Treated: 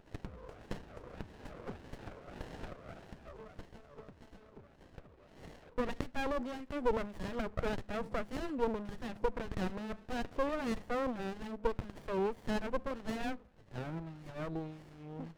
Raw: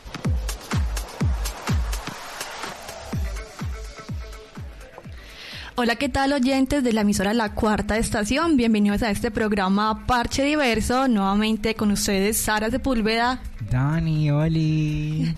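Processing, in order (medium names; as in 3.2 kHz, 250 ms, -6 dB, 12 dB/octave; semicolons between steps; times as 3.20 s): wah-wah 1.7 Hz 460–1900 Hz, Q 3.1; sliding maximum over 33 samples; trim -2 dB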